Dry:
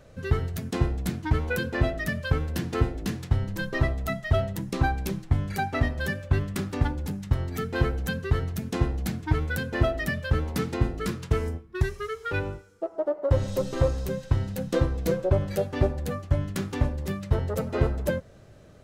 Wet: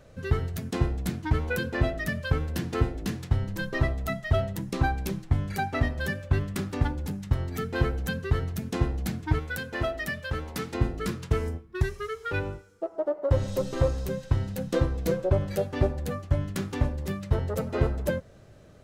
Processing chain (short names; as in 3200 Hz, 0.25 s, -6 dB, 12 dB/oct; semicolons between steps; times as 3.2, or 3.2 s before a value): 9.39–10.75 low shelf 430 Hz -7.5 dB; gain -1 dB